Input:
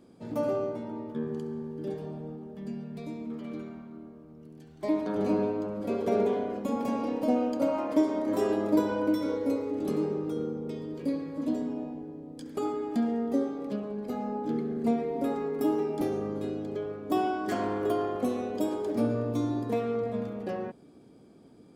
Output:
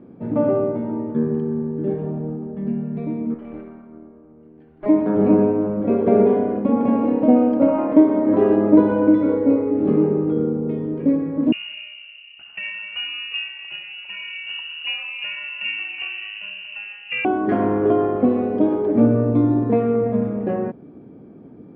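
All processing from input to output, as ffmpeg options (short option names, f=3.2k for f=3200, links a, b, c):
-filter_complex "[0:a]asettb=1/sr,asplit=3[a][b][c];[a]atrim=end=3.344[d];[b]atrim=start=3.34:end=4.86,asetpts=PTS-STARTPTS,afade=t=in:d=0.004:c=qsin,afade=t=out:st=1.516:d=0.004:c=qsin,equalizer=f=150:t=o:w=1.4:g=-12,aeval=exprs='(tanh(56.2*val(0)+0.75)-tanh(0.75))/56.2':c=same[e];[c]atrim=start=4.856[f];[d][e]acrossfade=d=0.004:c1=hsin:c2=qsin[g];[g][f]acrossfade=d=0.004:c1=qsin:c2=hsin,asettb=1/sr,asplit=3[h][i][j];[h]atrim=end=11.524[k];[i]atrim=start=11.52:end=17.25,asetpts=PTS-STARTPTS,afade=t=in:d=0.004:c=qsin,afade=t=out:st=5.726:d=0.004:c=qsin,lowpass=f=2.6k:t=q:w=0.5098,lowpass=f=2.6k:t=q:w=0.6013,lowpass=f=2.6k:t=q:w=0.9,lowpass=f=2.6k:t=q:w=2.563,afreqshift=-3100,asoftclip=type=hard:threshold=-17.5dB[l];[j]atrim=start=17.246[m];[k][l]acrossfade=d=0.004:c1=hsin:c2=qsin[n];[n][m]acrossfade=d=0.004:c1=qsin:c2=hsin,lowpass=f=2.4k:w=0.5412,lowpass=f=2.4k:w=1.3066,equalizer=f=180:w=0.33:g=8.5,volume=5dB"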